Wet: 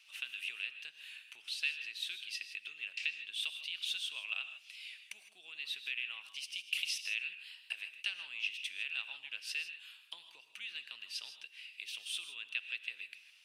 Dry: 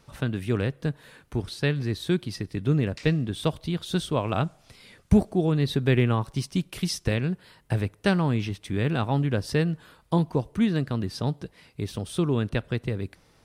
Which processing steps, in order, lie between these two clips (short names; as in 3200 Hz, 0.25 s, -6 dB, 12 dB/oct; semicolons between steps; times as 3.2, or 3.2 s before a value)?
compressor, threshold -29 dBFS, peak gain reduction 15 dB; resonant high-pass 2700 Hz, resonance Q 7.2; non-linear reverb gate 0.18 s rising, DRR 9.5 dB; gain -5 dB